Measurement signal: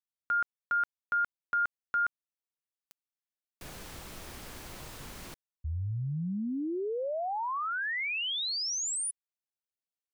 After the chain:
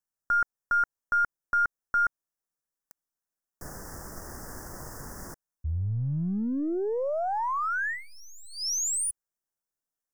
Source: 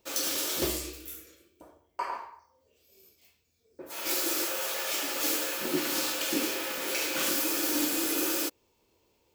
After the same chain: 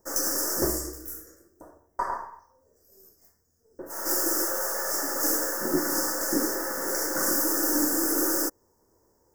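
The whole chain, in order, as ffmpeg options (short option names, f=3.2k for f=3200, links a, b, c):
-af "aeval=exprs='if(lt(val(0),0),0.708*val(0),val(0))':c=same,asuperstop=centerf=3100:order=12:qfactor=0.95,acontrast=70,volume=-1dB"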